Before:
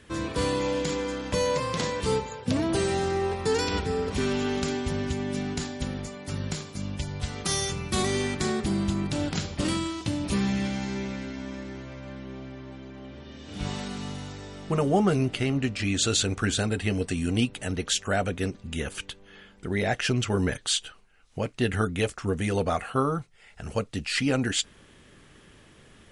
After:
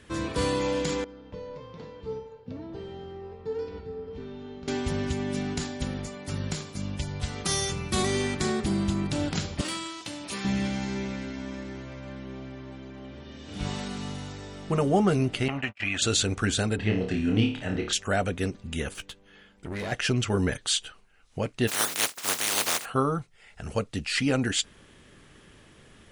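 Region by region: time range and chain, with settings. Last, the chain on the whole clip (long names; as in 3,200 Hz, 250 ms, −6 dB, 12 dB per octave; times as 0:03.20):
0:01.04–0:04.68: low-pass filter 5,100 Hz 24 dB per octave + tilt shelving filter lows +6.5 dB, about 1,200 Hz + tuned comb filter 450 Hz, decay 0.61 s, mix 90%
0:09.61–0:10.45: high-pass filter 880 Hz 6 dB per octave + hard clipping −24.5 dBFS
0:15.48–0:16.02: noise gate −30 dBFS, range −48 dB + flat-topped bell 1,400 Hz +15 dB 2.6 octaves + downward compressor 2 to 1, threshold −32 dBFS
0:16.76–0:17.93: high-frequency loss of the air 170 metres + flutter between parallel walls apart 4.7 metres, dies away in 0.41 s
0:18.94–0:19.92: tube saturation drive 29 dB, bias 0.75 + double-tracking delay 14 ms −12 dB
0:21.67–0:22.84: compressing power law on the bin magnitudes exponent 0.15 + high-pass filter 330 Hz 6 dB per octave
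whole clip: no processing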